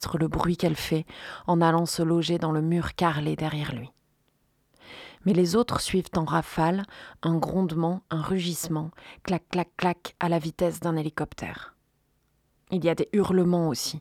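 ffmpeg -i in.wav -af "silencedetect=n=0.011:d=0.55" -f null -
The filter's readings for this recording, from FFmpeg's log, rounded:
silence_start: 3.87
silence_end: 4.88 | silence_duration: 1.01
silence_start: 11.69
silence_end: 12.70 | silence_duration: 1.02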